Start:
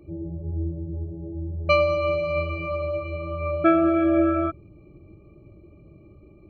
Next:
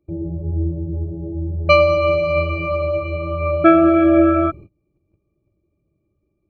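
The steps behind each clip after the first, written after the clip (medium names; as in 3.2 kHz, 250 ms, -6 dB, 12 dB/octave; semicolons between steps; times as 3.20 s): gate -42 dBFS, range -27 dB; trim +7 dB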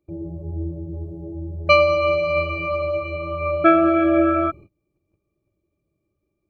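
bass shelf 440 Hz -7.5 dB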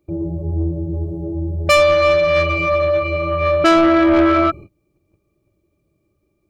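saturation -17.5 dBFS, distortion -10 dB; trim +8.5 dB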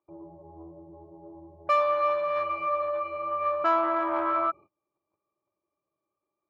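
band-pass filter 1 kHz, Q 4.4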